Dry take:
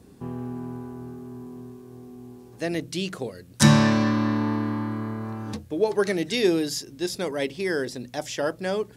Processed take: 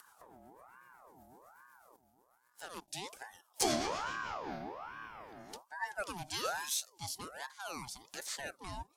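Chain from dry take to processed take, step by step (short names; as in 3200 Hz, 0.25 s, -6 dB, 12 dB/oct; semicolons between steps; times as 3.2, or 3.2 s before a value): spectral noise reduction 13 dB; rotary speaker horn 8 Hz, later 0.7 Hz, at 3.89; upward compressor, threshold -34 dBFS; 1.96–2.88 power-law curve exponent 1.4; pre-emphasis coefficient 0.8; soft clip -14.5 dBFS, distortion -18 dB; ring modulator with a swept carrier 900 Hz, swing 50%, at 1.2 Hz; gain +1 dB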